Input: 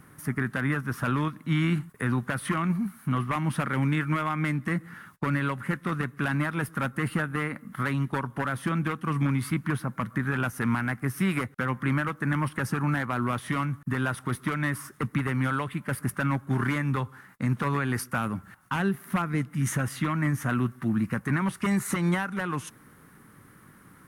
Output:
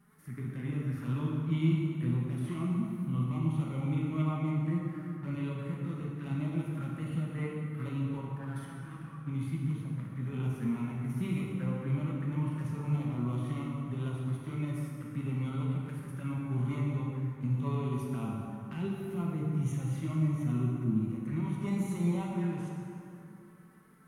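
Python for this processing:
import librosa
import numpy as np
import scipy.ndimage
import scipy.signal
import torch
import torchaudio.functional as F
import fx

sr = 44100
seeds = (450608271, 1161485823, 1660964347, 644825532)

y = fx.over_compress(x, sr, threshold_db=-33.0, ratio=-0.5, at=(8.32, 9.26), fade=0.02)
y = fx.tremolo_shape(y, sr, shape='saw_up', hz=7.1, depth_pct=50)
y = fx.env_flanger(y, sr, rest_ms=5.4, full_db=-27.0)
y = fx.hpss(y, sr, part='percussive', gain_db=-13)
y = fx.rev_plate(y, sr, seeds[0], rt60_s=2.8, hf_ratio=0.6, predelay_ms=0, drr_db=-3.0)
y = y * librosa.db_to_amplitude(-5.0)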